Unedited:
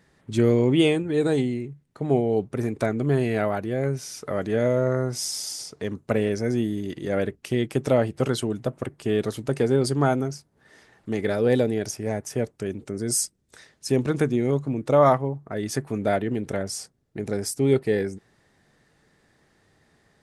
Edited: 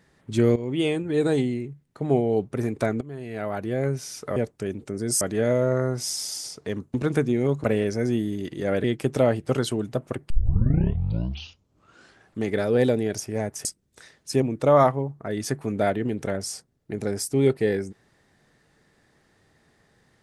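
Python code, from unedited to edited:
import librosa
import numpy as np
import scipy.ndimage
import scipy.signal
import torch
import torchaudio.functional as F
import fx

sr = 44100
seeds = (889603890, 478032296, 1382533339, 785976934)

y = fx.edit(x, sr, fx.fade_in_from(start_s=0.56, length_s=0.59, floor_db=-14.5),
    fx.fade_in_from(start_s=3.01, length_s=0.66, curve='qua', floor_db=-17.0),
    fx.cut(start_s=7.29, length_s=0.26),
    fx.tape_start(start_s=9.01, length_s=2.08),
    fx.move(start_s=12.36, length_s=0.85, to_s=4.36),
    fx.move(start_s=13.98, length_s=0.7, to_s=6.09), tone=tone)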